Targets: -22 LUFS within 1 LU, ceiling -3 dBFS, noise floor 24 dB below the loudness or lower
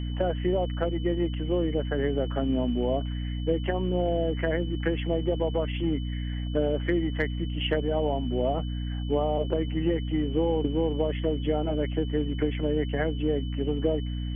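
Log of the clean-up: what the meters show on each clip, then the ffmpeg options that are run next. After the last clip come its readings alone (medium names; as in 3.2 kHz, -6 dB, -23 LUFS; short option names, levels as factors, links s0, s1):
hum 60 Hz; highest harmonic 300 Hz; hum level -28 dBFS; steady tone 3 kHz; tone level -46 dBFS; loudness -28.0 LUFS; peak level -12.5 dBFS; loudness target -22.0 LUFS
-> -af "bandreject=f=60:t=h:w=4,bandreject=f=120:t=h:w=4,bandreject=f=180:t=h:w=4,bandreject=f=240:t=h:w=4,bandreject=f=300:t=h:w=4"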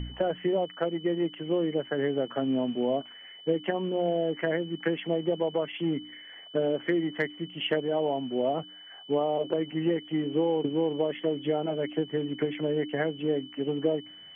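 hum not found; steady tone 3 kHz; tone level -46 dBFS
-> -af "bandreject=f=3000:w=30"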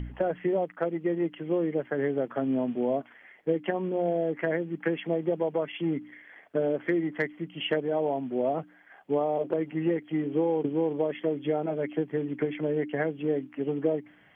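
steady tone not found; loudness -29.5 LUFS; peak level -14.5 dBFS; loudness target -22.0 LUFS
-> -af "volume=2.37"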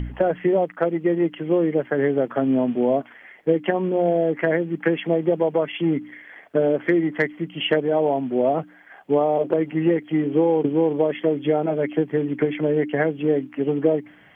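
loudness -22.0 LUFS; peak level -7.0 dBFS; noise floor -49 dBFS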